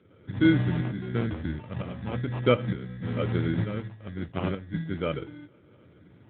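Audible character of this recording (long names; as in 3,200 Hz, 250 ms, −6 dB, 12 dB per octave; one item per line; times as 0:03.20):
phaser sweep stages 2, 0.42 Hz, lowest notch 440–2,800 Hz
aliases and images of a low sample rate 1,800 Hz, jitter 0%
tremolo saw up 1.1 Hz, depth 70%
AMR narrowband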